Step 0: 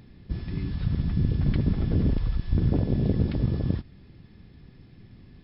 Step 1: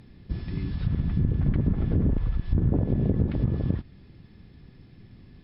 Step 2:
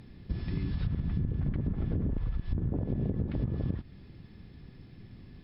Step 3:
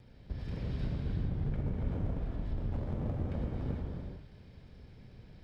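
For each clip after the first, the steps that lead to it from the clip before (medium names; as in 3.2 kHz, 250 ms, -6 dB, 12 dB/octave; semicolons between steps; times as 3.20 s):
low-pass that closes with the level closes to 1.4 kHz, closed at -18 dBFS
compression, threshold -27 dBFS, peak gain reduction 9.5 dB
comb filter that takes the minimum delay 1.3 ms; gated-style reverb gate 470 ms flat, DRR -1.5 dB; trim -6 dB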